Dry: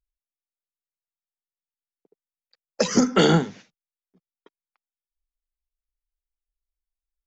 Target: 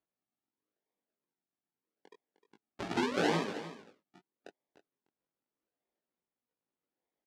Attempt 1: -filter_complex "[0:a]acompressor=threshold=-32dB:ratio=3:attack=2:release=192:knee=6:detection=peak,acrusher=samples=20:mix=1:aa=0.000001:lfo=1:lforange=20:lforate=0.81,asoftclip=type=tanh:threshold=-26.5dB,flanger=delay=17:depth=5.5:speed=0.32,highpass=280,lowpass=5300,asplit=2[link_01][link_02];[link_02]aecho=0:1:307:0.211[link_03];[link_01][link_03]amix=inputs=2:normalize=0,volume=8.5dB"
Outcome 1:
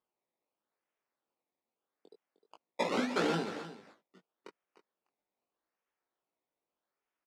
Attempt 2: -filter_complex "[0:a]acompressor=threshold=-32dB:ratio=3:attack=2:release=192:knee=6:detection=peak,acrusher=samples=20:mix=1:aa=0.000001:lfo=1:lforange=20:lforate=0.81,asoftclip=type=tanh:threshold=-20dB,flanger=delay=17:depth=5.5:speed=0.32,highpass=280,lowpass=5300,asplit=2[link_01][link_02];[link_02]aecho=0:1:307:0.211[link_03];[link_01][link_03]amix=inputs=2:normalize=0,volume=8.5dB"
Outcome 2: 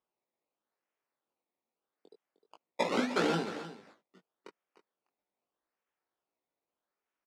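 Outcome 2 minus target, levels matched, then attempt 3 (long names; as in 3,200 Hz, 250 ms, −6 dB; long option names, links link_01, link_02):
sample-and-hold swept by an LFO: distortion −9 dB
-filter_complex "[0:a]acompressor=threshold=-32dB:ratio=3:attack=2:release=192:knee=6:detection=peak,acrusher=samples=61:mix=1:aa=0.000001:lfo=1:lforange=61:lforate=0.81,asoftclip=type=tanh:threshold=-20dB,flanger=delay=17:depth=5.5:speed=0.32,highpass=280,lowpass=5300,asplit=2[link_01][link_02];[link_02]aecho=0:1:307:0.211[link_03];[link_01][link_03]amix=inputs=2:normalize=0,volume=8.5dB"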